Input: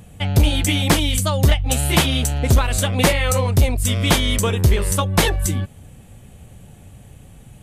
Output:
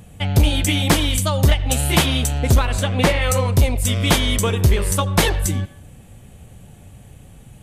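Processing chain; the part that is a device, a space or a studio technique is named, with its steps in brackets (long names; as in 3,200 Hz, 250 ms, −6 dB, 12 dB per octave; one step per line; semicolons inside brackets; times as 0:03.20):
filtered reverb send (on a send: high-pass filter 470 Hz + low-pass filter 4,300 Hz 12 dB per octave + convolution reverb RT60 0.65 s, pre-delay 76 ms, DRR 14.5 dB)
0:02.65–0:03.22: on the sum: high-shelf EQ 6,500 Hz −11 dB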